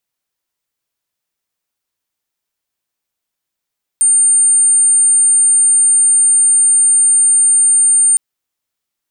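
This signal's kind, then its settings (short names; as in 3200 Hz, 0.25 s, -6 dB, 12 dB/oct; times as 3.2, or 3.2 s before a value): tone sine 9000 Hz -7 dBFS 4.16 s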